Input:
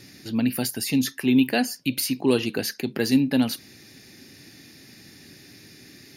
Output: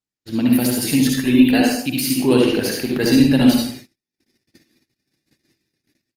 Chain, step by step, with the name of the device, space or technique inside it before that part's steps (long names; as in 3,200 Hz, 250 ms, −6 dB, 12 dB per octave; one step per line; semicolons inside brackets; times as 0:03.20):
multi-tap delay 65/72/102 ms −16.5/−9.5/−19.5 dB
speakerphone in a meeting room (convolution reverb RT60 0.55 s, pre-delay 56 ms, DRR 0 dB; automatic gain control gain up to 4 dB; noise gate −35 dBFS, range −51 dB; level +1 dB; Opus 20 kbit/s 48,000 Hz)